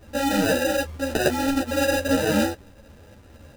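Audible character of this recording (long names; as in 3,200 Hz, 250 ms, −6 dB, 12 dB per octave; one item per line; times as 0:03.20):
aliases and images of a low sample rate 1,100 Hz, jitter 0%
a shimmering, thickened sound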